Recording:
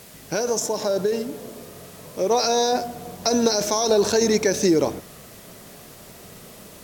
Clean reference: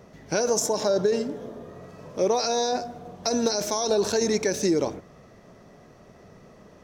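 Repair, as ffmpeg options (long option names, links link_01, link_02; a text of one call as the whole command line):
ffmpeg -i in.wav -af "afwtdn=0.005,asetnsamples=nb_out_samples=441:pad=0,asendcmd='2.31 volume volume -4.5dB',volume=0dB" out.wav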